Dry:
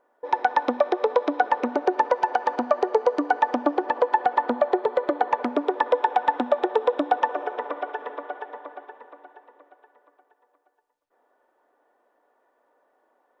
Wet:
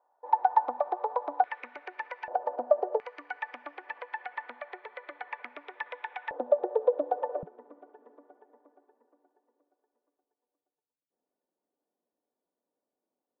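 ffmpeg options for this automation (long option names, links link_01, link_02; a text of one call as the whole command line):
ffmpeg -i in.wav -af "asetnsamples=nb_out_samples=441:pad=0,asendcmd='1.44 bandpass f 2200;2.28 bandpass f 610;3 bandpass f 2200;6.31 bandpass f 540;7.43 bandpass f 170',bandpass=frequency=840:width_type=q:width=4:csg=0" out.wav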